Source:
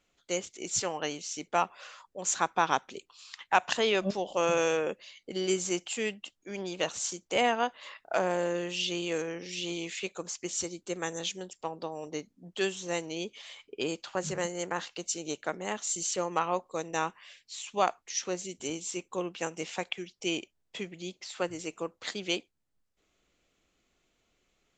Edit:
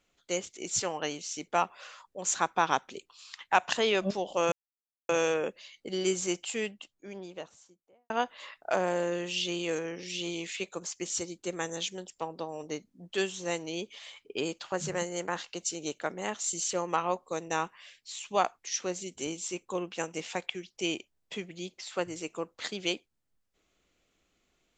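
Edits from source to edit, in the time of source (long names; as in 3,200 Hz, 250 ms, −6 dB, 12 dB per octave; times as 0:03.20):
0:04.52: splice in silence 0.57 s
0:05.79–0:07.53: fade out and dull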